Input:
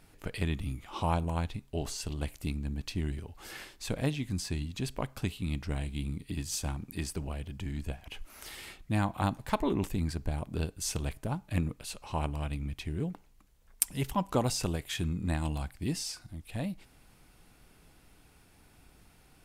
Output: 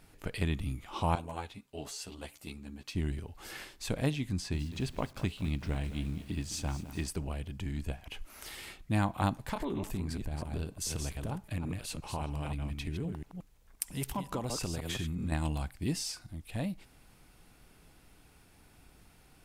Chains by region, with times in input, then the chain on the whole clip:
1.15–2.95 HPF 330 Hz 6 dB/oct + ensemble effect
4.31–7.08 high shelf 8700 Hz -11.5 dB + lo-fi delay 0.21 s, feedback 55%, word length 8-bit, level -12.5 dB
9.38–15.32 reverse delay 0.175 s, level -6.5 dB + compressor 4:1, threshold -31 dBFS
whole clip: dry

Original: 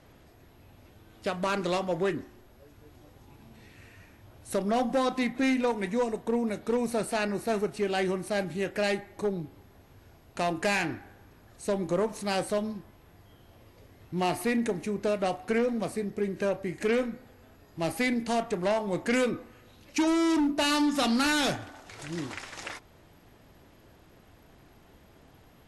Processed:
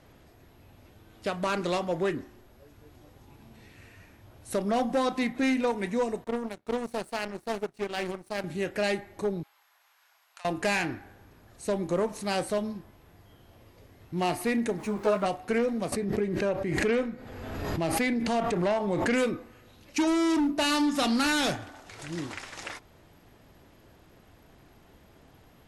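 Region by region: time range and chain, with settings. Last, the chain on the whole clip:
6.24–8.44 power-law curve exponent 2 + Doppler distortion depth 0.22 ms
9.43–10.45 HPF 950 Hz 24 dB/oct + compressor, threshold -46 dBFS
14.78–15.26 zero-crossing step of -43 dBFS + bell 1000 Hz +11.5 dB 1.2 oct + ensemble effect
15.92–19.18 high shelf 6700 Hz -10 dB + backwards sustainer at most 30 dB/s
whole clip: dry

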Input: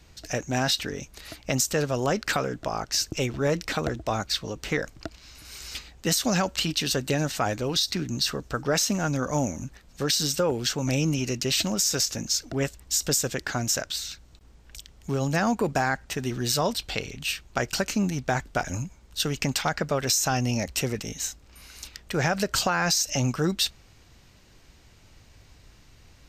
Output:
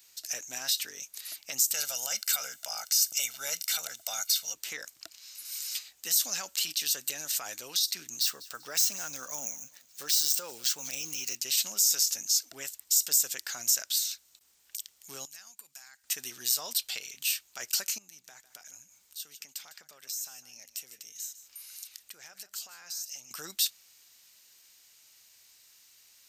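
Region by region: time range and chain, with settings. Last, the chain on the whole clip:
1.74–4.54 tilt +2.5 dB/oct + comb 1.4 ms, depth 74%
8.21–11.36 median filter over 3 samples + feedback echo 0.194 s, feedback 34%, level -23.5 dB
15.25–16.04 compressor 2.5:1, threshold -31 dBFS + passive tone stack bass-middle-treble 5-5-5
17.98–23.31 compressor 2.5:1, threshold -47 dBFS + echo 0.153 s -14 dB
whole clip: high shelf 11000 Hz +7.5 dB; limiter -17.5 dBFS; differentiator; gain +4 dB

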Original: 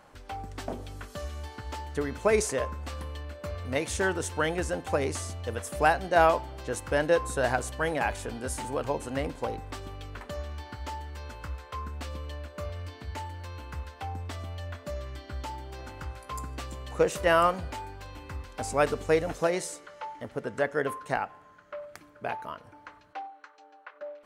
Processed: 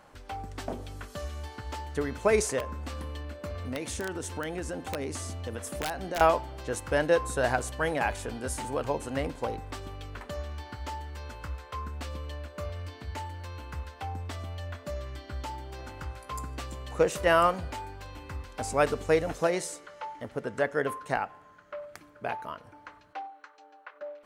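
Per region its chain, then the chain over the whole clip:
2.6–6.21 bell 260 Hz +5.5 dB 0.78 oct + compressor 3:1, threshold -32 dBFS + wrapped overs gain 23.5 dB
whole clip: dry

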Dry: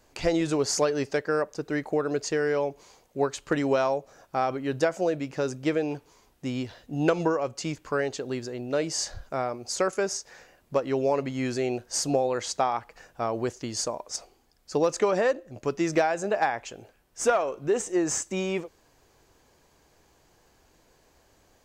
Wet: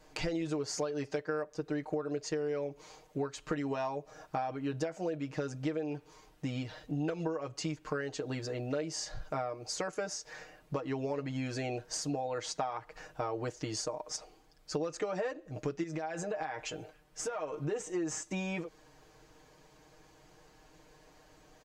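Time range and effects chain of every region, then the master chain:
15.83–17.68 compressor, threshold -31 dBFS + doubler 13 ms -13 dB
whole clip: comb 6.5 ms, depth 86%; compressor 5:1, threshold -33 dBFS; high shelf 8500 Hz -10 dB

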